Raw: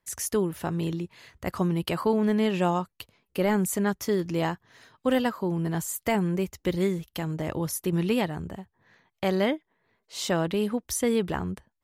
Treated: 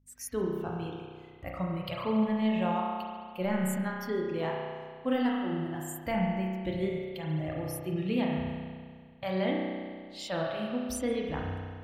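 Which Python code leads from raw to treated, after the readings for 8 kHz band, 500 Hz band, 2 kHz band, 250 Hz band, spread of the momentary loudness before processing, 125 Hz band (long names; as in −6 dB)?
−10.5 dB, −5.5 dB, −4.5 dB, −4.0 dB, 11 LU, −5.0 dB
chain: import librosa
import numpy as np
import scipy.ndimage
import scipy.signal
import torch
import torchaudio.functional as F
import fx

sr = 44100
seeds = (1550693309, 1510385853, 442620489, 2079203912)

p1 = fx.low_shelf(x, sr, hz=160.0, db=7.5)
p2 = p1 + fx.echo_single(p1, sr, ms=136, db=-17.5, dry=0)
p3 = fx.noise_reduce_blind(p2, sr, reduce_db=16)
p4 = fx.add_hum(p3, sr, base_hz=50, snr_db=32)
p5 = fx.rev_spring(p4, sr, rt60_s=1.9, pass_ms=(32,), chirp_ms=40, drr_db=-1.5)
y = p5 * librosa.db_to_amplitude(-8.0)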